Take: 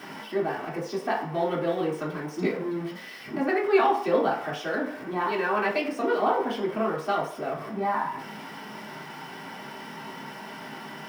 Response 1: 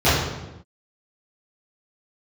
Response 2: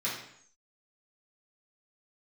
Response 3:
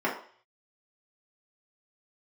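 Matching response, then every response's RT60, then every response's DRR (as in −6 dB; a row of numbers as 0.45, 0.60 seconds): 3; non-exponential decay, non-exponential decay, 0.50 s; −14.5, −9.0, −6.5 decibels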